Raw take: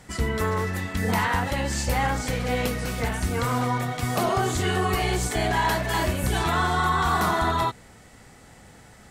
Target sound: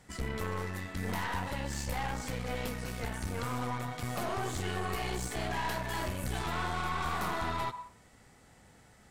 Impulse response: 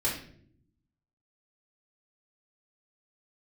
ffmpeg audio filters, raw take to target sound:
-filter_complex "[0:a]aeval=exprs='(tanh(14.1*val(0)+0.65)-tanh(0.65))/14.1':channel_layout=same,asplit=2[link_01][link_02];[link_02]highpass=frequency=980:width_type=q:width=4.9[link_03];[1:a]atrim=start_sample=2205,adelay=96[link_04];[link_03][link_04]afir=irnorm=-1:irlink=0,volume=-26.5dB[link_05];[link_01][link_05]amix=inputs=2:normalize=0,volume=-6.5dB"

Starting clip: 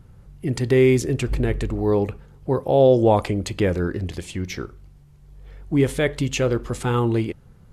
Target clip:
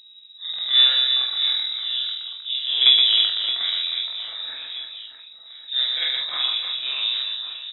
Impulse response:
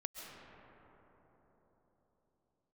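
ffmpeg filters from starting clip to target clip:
-filter_complex "[0:a]afftfilt=real='re':imag='-im':win_size=4096:overlap=0.75,aeval=exprs='0.447*(cos(1*acos(clip(val(0)/0.447,-1,1)))-cos(1*PI/2))+0.1*(cos(3*acos(clip(val(0)/0.447,-1,1)))-cos(3*PI/2))+0.0282*(cos(5*acos(clip(val(0)/0.447,-1,1)))-cos(5*PI/2))+0.0158*(cos(6*acos(clip(val(0)/0.447,-1,1)))-cos(6*PI/2))+0.00794*(cos(7*acos(clip(val(0)/0.447,-1,1)))-cos(7*PI/2))':channel_layout=same,aeval=exprs='val(0)+0.00224*(sin(2*PI*60*n/s)+sin(2*PI*2*60*n/s)/2+sin(2*PI*3*60*n/s)/3+sin(2*PI*4*60*n/s)/4+sin(2*PI*5*60*n/s)/5)':channel_layout=same,asplit=2[link_01][link_02];[link_02]adelay=21,volume=-5dB[link_03];[link_01][link_03]amix=inputs=2:normalize=0,asplit=2[link_04][link_05];[link_05]aecho=0:1:120|312|619.2|1111|1897:0.631|0.398|0.251|0.158|0.1[link_06];[link_04][link_06]amix=inputs=2:normalize=0,lowpass=frequency=3300:width_type=q:width=0.5098,lowpass=frequency=3300:width_type=q:width=0.6013,lowpass=frequency=3300:width_type=q:width=0.9,lowpass=frequency=3300:width_type=q:width=2.563,afreqshift=-3900,volume=2.5dB"

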